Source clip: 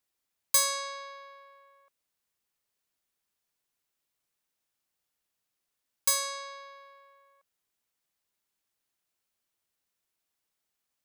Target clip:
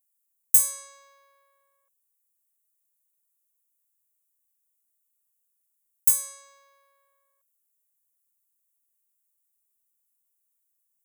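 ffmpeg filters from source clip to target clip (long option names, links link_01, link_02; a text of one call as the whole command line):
ffmpeg -i in.wav -af "aeval=exprs='0.316*(cos(1*acos(clip(val(0)/0.316,-1,1)))-cos(1*PI/2))+0.00794*(cos(8*acos(clip(val(0)/0.316,-1,1)))-cos(8*PI/2))':channel_layout=same,aexciter=amount=13:drive=2.6:freq=6800,volume=-13.5dB" out.wav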